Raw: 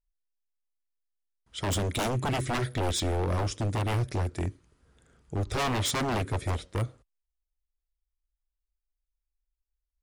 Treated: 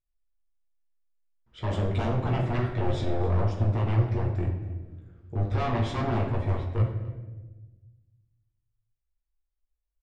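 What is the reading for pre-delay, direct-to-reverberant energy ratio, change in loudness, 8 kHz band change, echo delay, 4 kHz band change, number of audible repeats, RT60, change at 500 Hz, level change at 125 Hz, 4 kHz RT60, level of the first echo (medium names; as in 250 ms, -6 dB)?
9 ms, -1.5 dB, +2.0 dB, under -20 dB, 273 ms, -9.5 dB, 1, 1.2 s, +1.5 dB, +5.0 dB, 0.85 s, -19.0 dB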